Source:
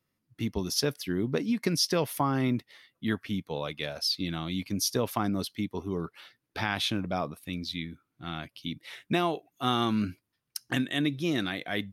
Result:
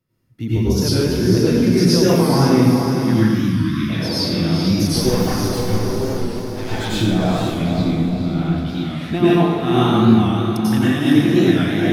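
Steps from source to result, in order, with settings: 4.88–6.85 s: comb filter that takes the minimum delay 7.9 ms; bass shelf 460 Hz +10 dB; on a send: echo that smears into a reverb 456 ms, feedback 53%, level -5.5 dB; 3.11–3.89 s: on the sum: spectral selection erased 350–970 Hz; 7.62–8.58 s: tilt shelf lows +5 dB, about 720 Hz; plate-style reverb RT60 1.3 s, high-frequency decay 0.75×, pre-delay 80 ms, DRR -9.5 dB; warped record 45 rpm, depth 100 cents; trim -3 dB

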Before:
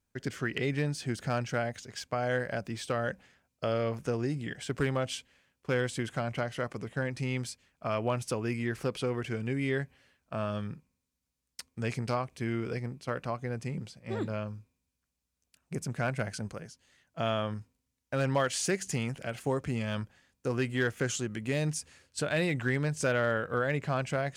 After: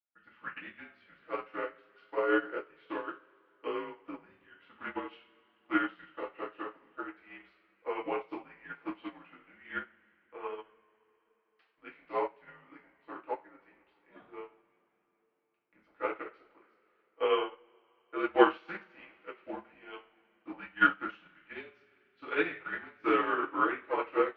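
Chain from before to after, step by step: mistuned SSB -190 Hz 580–3200 Hz; two-slope reverb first 0.49 s, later 4.4 s, from -19 dB, DRR -5.5 dB; upward expansion 2.5:1, over -37 dBFS; trim +4.5 dB

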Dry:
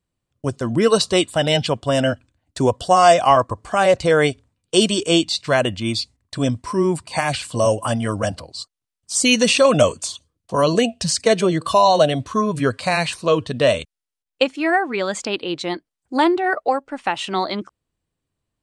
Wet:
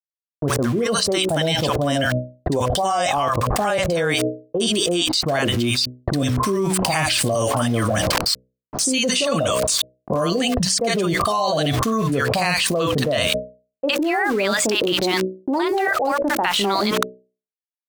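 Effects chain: fade-in on the opening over 0.90 s; small samples zeroed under -35 dBFS; hum notches 60/120/180/240/300/360/420/480/540/600 Hz; bands offset in time lows, highs 60 ms, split 860 Hz; speed mistake 24 fps film run at 25 fps; level flattener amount 100%; trim -9.5 dB

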